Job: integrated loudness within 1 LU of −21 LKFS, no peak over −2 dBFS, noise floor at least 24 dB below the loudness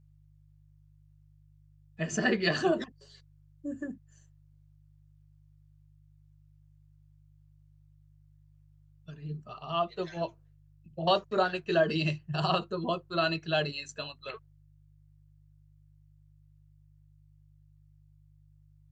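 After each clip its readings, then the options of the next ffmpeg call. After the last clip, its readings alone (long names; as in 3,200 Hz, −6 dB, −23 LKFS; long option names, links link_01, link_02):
mains hum 50 Hz; hum harmonics up to 150 Hz; level of the hum −54 dBFS; integrated loudness −31.5 LKFS; sample peak −13.5 dBFS; target loudness −21.0 LKFS
→ -af "bandreject=frequency=50:width_type=h:width=4,bandreject=frequency=100:width_type=h:width=4,bandreject=frequency=150:width_type=h:width=4"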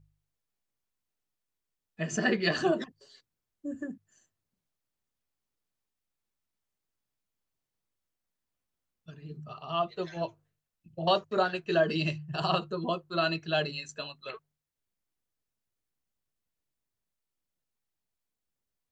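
mains hum none found; integrated loudness −30.5 LKFS; sample peak −13.5 dBFS; target loudness −21.0 LKFS
→ -af "volume=9.5dB"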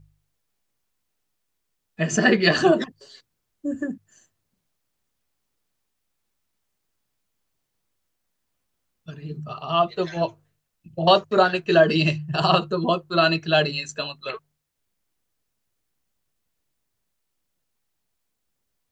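integrated loudness −21.5 LKFS; sample peak −4.0 dBFS; background noise floor −77 dBFS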